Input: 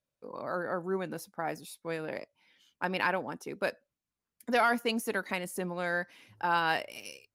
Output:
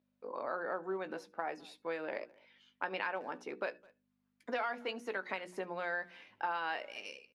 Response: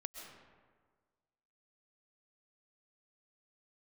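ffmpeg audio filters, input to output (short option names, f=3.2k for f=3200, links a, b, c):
-filter_complex "[0:a]bandreject=f=60:t=h:w=6,bandreject=f=120:t=h:w=6,bandreject=f=180:t=h:w=6,bandreject=f=240:t=h:w=6,bandreject=f=300:t=h:w=6,bandreject=f=360:t=h:w=6,bandreject=f=420:t=h:w=6,bandreject=f=480:t=h:w=6,acompressor=threshold=-34dB:ratio=6,aeval=exprs='val(0)+0.000708*(sin(2*PI*50*n/s)+sin(2*PI*2*50*n/s)/2+sin(2*PI*3*50*n/s)/3+sin(2*PI*4*50*n/s)/4+sin(2*PI*5*50*n/s)/5)':c=same,highpass=350,lowpass=3.5k,asplit=2[a][b];[b]adelay=16,volume=-11dB[c];[a][c]amix=inputs=2:normalize=0,asplit=2[d][e];[e]adelay=210,highpass=300,lowpass=3.4k,asoftclip=type=hard:threshold=-33dB,volume=-24dB[f];[d][f]amix=inputs=2:normalize=0[g];[1:a]atrim=start_sample=2205,afade=t=out:st=0.15:d=0.01,atrim=end_sample=7056,asetrate=61740,aresample=44100[h];[g][h]afir=irnorm=-1:irlink=0,volume=8.5dB"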